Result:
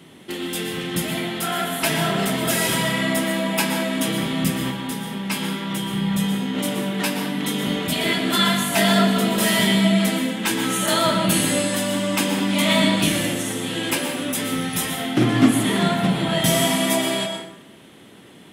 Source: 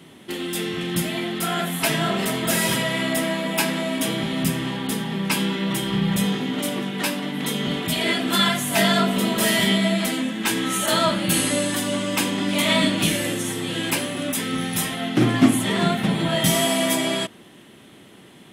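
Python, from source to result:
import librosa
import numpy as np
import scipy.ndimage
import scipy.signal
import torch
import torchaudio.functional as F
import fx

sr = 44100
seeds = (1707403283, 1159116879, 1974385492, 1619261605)

y = fx.comb_fb(x, sr, f0_hz=51.0, decay_s=0.2, harmonics='all', damping=0.0, mix_pct=70, at=(4.71, 6.55))
y = fx.rev_plate(y, sr, seeds[0], rt60_s=0.76, hf_ratio=0.7, predelay_ms=105, drr_db=5.5)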